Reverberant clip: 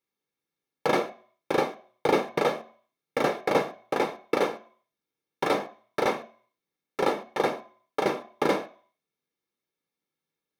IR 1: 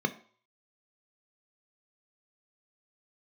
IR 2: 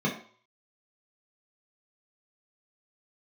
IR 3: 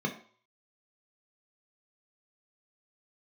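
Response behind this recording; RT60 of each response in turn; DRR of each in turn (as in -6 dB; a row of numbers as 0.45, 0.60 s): 1; 0.50, 0.50, 0.50 s; 8.5, -4.0, 1.5 dB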